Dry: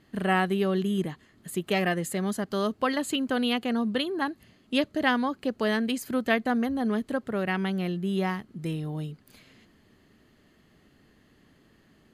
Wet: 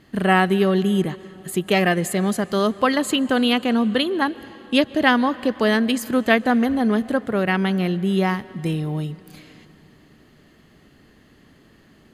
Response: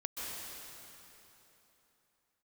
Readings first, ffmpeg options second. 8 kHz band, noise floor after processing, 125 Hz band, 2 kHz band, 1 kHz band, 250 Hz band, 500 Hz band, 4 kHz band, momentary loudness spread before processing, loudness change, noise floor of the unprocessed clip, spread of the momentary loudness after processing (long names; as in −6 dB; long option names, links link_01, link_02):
+7.0 dB, −53 dBFS, +7.5 dB, +7.5 dB, +7.5 dB, +7.5 dB, +7.5 dB, +7.5 dB, 9 LU, +7.5 dB, −62 dBFS, 9 LU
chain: -filter_complex "[0:a]asplit=2[link_01][link_02];[1:a]atrim=start_sample=2205,lowpass=9000[link_03];[link_02][link_03]afir=irnorm=-1:irlink=0,volume=-19dB[link_04];[link_01][link_04]amix=inputs=2:normalize=0,volume=7dB"